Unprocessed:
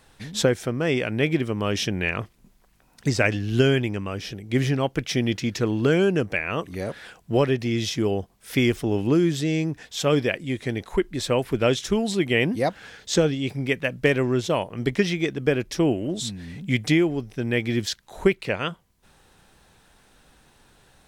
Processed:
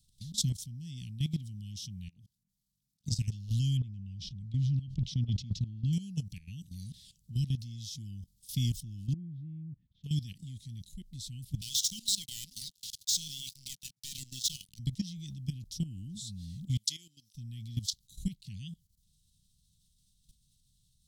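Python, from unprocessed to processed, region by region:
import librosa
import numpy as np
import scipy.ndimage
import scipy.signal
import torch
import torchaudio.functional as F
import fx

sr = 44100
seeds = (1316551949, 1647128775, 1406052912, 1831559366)

y = fx.chain(x, sr, fx.highpass(hz=180.0, slope=6),
    fx.peak_eq(hz=310.0, db=5.5, octaves=2.8),
    fx.level_steps(step_db=23), at=(2.08, 3.12))
y = fx.chain(y, sr, fx.lowpass(hz=2800.0, slope=12),
    fx.peak_eq(hz=1200.0, db=-7.5, octaves=2.0),
    fx.sustainer(db_per_s=53.0), at=(3.77, 5.93))
y = fx.chain(y, sr, fx.lowpass(hz=1300.0, slope=24),
    fx.low_shelf(hz=160.0, db=-9.0), at=(9.13, 10.04))
y = fx.chain(y, sr, fx.level_steps(step_db=11),
    fx.bandpass_q(hz=5500.0, q=0.67),
    fx.leveller(passes=5), at=(11.61, 14.79))
y = fx.chain(y, sr, fx.highpass(hz=650.0, slope=12),
    fx.dynamic_eq(hz=5900.0, q=1.1, threshold_db=-43.0, ratio=4.0, max_db=5), at=(16.77, 17.35))
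y = scipy.signal.sosfilt(scipy.signal.cheby2(4, 60, [440.0, 1500.0], 'bandstop', fs=sr, output='sos'), y)
y = fx.peak_eq(y, sr, hz=2400.0, db=-8.5, octaves=0.29)
y = fx.level_steps(y, sr, step_db=14)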